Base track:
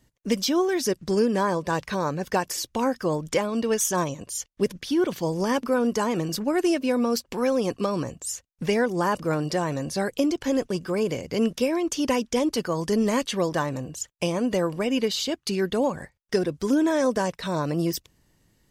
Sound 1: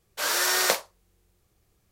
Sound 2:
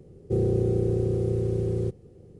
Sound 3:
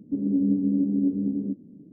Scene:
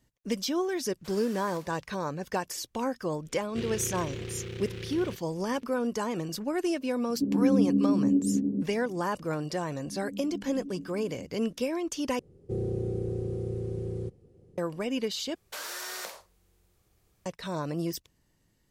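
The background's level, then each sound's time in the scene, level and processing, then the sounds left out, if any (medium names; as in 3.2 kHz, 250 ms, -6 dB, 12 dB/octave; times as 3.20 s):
base track -6.5 dB
0.87 s: add 1 -15 dB + compression, threshold -32 dBFS
3.25 s: add 2 -13 dB + delay time shaken by noise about 2.4 kHz, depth 0.17 ms
7.09 s: add 3 -0.5 dB
9.70 s: add 3 -14 dB + detune thickener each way 39 cents
12.19 s: replace with 2 -7.5 dB
15.35 s: replace with 1 -0.5 dB + compression, threshold -35 dBFS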